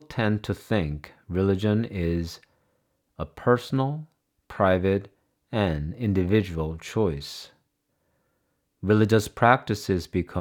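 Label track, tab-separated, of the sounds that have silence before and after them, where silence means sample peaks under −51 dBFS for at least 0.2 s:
3.190000	4.120000	sound
4.500000	5.080000	sound
5.520000	7.530000	sound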